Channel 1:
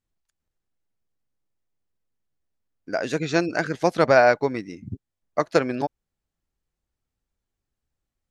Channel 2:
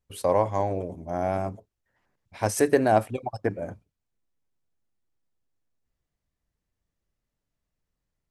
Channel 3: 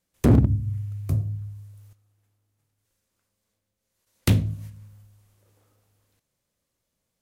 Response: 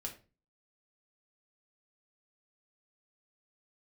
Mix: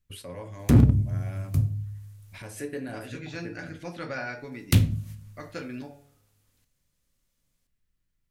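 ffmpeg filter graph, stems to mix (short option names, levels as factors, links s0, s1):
-filter_complex "[0:a]bandreject=f=141.8:t=h:w=4,bandreject=f=283.6:t=h:w=4,bandreject=f=425.4:t=h:w=4,bandreject=f=567.2:t=h:w=4,bandreject=f=709:t=h:w=4,bandreject=f=850.8:t=h:w=4,bandreject=f=992.6:t=h:w=4,bandreject=f=1134.4:t=h:w=4,bandreject=f=1276.2:t=h:w=4,bandreject=f=1418:t=h:w=4,bandreject=f=1559.8:t=h:w=4,bandreject=f=1701.6:t=h:w=4,bandreject=f=1843.4:t=h:w=4,bandreject=f=1985.2:t=h:w=4,bandreject=f=2127:t=h:w=4,bandreject=f=2268.8:t=h:w=4,bandreject=f=2410.6:t=h:w=4,bandreject=f=2552.4:t=h:w=4,bandreject=f=2694.2:t=h:w=4,bandreject=f=2836:t=h:w=4,bandreject=f=2977.8:t=h:w=4,bandreject=f=3119.6:t=h:w=4,bandreject=f=3261.4:t=h:w=4,bandreject=f=3403.2:t=h:w=4,bandreject=f=3545:t=h:w=4,bandreject=f=3686.8:t=h:w=4,bandreject=f=3828.6:t=h:w=4,volume=0.501,asplit=2[s0][s1];[s1]volume=0.631[s2];[1:a]bandreject=f=790:w=12,volume=1.26,asplit=2[s3][s4];[s4]volume=0.266[s5];[2:a]adelay=450,volume=0.891,asplit=2[s6][s7];[s7]volume=0.596[s8];[s0][s3]amix=inputs=2:normalize=0,acrossover=split=1000|4900[s9][s10][s11];[s9]acompressor=threshold=0.02:ratio=4[s12];[s10]acompressor=threshold=0.00794:ratio=4[s13];[s11]acompressor=threshold=0.00282:ratio=4[s14];[s12][s13][s14]amix=inputs=3:normalize=0,alimiter=level_in=1.78:limit=0.0631:level=0:latency=1:release=194,volume=0.562,volume=1[s15];[3:a]atrim=start_sample=2205[s16];[s2][s5][s8]amix=inputs=3:normalize=0[s17];[s17][s16]afir=irnorm=-1:irlink=0[s18];[s6][s15][s18]amix=inputs=3:normalize=0,equalizer=f=570:w=0.58:g=-8"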